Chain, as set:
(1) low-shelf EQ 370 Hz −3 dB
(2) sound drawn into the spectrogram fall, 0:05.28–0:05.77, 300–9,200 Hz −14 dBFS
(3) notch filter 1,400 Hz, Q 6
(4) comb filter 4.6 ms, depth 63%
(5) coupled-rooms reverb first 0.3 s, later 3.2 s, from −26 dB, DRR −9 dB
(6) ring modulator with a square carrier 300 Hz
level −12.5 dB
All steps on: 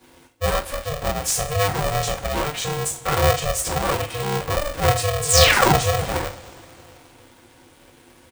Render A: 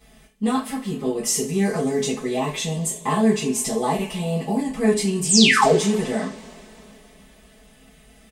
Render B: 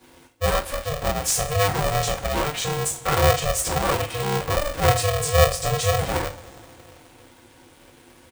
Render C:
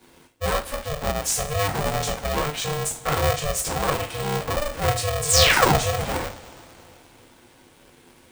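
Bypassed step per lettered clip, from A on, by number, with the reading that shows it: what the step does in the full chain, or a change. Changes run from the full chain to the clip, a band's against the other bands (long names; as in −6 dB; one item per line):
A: 6, 250 Hz band +12.5 dB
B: 2, 4 kHz band −2.5 dB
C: 4, change in integrated loudness −2.0 LU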